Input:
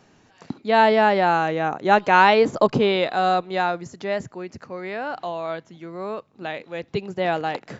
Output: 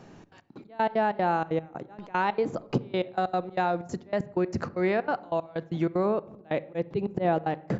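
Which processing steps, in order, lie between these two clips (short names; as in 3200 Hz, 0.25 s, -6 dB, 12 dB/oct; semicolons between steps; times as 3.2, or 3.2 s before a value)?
tilt shelf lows +4.5 dB, about 1200 Hz, from 6.05 s lows +8.5 dB; AGC gain up to 7.5 dB; auto swell 0.188 s; compressor 6:1, threshold -26 dBFS, peak gain reduction 17 dB; step gate "xxx.x..x..x.xx." 189 bpm -24 dB; reverb RT60 0.75 s, pre-delay 6 ms, DRR 15 dB; gain +3 dB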